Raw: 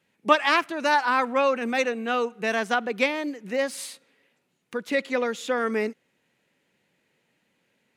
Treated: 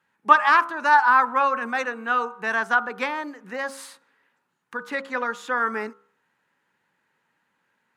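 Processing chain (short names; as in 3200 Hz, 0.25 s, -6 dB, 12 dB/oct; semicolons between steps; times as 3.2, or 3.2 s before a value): band shelf 1200 Hz +12.5 dB 1.3 oct; de-hum 67.9 Hz, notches 22; gain -5.5 dB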